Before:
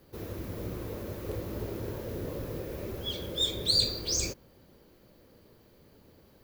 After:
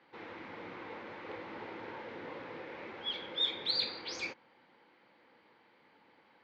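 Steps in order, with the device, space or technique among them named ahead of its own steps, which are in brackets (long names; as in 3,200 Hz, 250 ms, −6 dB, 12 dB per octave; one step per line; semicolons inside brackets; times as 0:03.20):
phone earpiece (loudspeaker in its box 400–3,600 Hz, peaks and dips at 400 Hz −9 dB, 610 Hz −9 dB, 870 Hz +8 dB, 1,500 Hz +3 dB, 2,100 Hz +8 dB)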